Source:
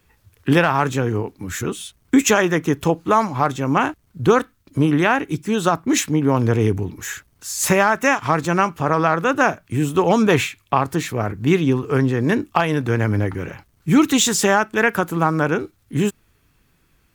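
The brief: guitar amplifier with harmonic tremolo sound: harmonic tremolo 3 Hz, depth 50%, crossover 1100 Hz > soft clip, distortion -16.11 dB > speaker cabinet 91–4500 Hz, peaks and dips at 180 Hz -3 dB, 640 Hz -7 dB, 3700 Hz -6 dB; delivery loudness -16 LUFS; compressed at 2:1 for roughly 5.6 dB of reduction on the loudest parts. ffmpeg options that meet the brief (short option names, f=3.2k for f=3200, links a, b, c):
-filter_complex "[0:a]acompressor=threshold=-20dB:ratio=2,acrossover=split=1100[a][b];[a]aeval=exprs='val(0)*(1-0.5/2+0.5/2*cos(2*PI*3*n/s))':c=same[c];[b]aeval=exprs='val(0)*(1-0.5/2-0.5/2*cos(2*PI*3*n/s))':c=same[d];[c][d]amix=inputs=2:normalize=0,asoftclip=threshold=-16dB,highpass=91,equalizer=f=180:t=q:w=4:g=-3,equalizer=f=640:t=q:w=4:g=-7,equalizer=f=3.7k:t=q:w=4:g=-6,lowpass=f=4.5k:w=0.5412,lowpass=f=4.5k:w=1.3066,volume=12.5dB"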